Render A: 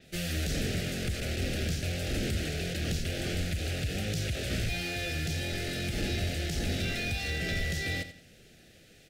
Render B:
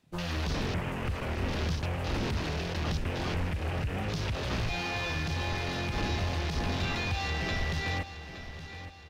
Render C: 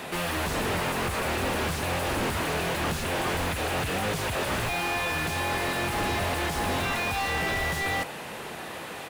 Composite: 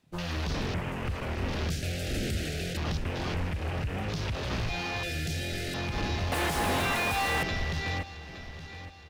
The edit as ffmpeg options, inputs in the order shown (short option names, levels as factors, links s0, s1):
-filter_complex "[0:a]asplit=2[s0][s1];[1:a]asplit=4[s2][s3][s4][s5];[s2]atrim=end=1.702[s6];[s0]atrim=start=1.698:end=2.772[s7];[s3]atrim=start=2.768:end=5.032[s8];[s1]atrim=start=5.028:end=5.742[s9];[s4]atrim=start=5.738:end=6.322[s10];[2:a]atrim=start=6.318:end=7.432[s11];[s5]atrim=start=7.428[s12];[s6][s7]acrossfade=d=0.004:c1=hsin:c2=hsin[s13];[s13][s8]acrossfade=d=0.004:c1=hsin:c2=hsin[s14];[s14][s9]acrossfade=d=0.004:c1=hsin:c2=hsin[s15];[s15][s10]acrossfade=d=0.004:c1=hsin:c2=hsin[s16];[s16][s11]acrossfade=d=0.004:c1=hsin:c2=hsin[s17];[s17][s12]acrossfade=d=0.004:c1=hsin:c2=hsin"